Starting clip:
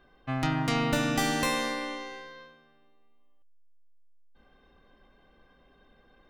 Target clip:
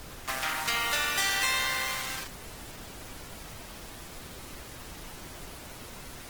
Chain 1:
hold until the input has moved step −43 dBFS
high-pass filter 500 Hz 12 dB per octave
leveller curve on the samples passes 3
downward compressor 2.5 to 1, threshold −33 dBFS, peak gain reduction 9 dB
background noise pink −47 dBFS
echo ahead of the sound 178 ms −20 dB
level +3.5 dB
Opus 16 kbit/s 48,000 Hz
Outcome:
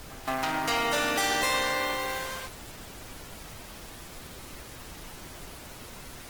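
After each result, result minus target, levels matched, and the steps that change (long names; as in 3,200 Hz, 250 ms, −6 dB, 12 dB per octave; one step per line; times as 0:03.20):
500 Hz band +9.0 dB; hold until the input has moved: distortion −11 dB
change: high-pass filter 1,400 Hz 12 dB per octave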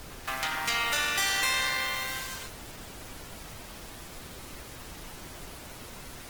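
hold until the input has moved: distortion −11 dB
change: hold until the input has moved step −35 dBFS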